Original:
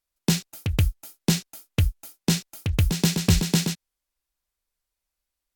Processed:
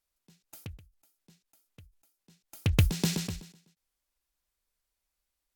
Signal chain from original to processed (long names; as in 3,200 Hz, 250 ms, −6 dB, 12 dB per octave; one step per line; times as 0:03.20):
every ending faded ahead of time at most 110 dB per second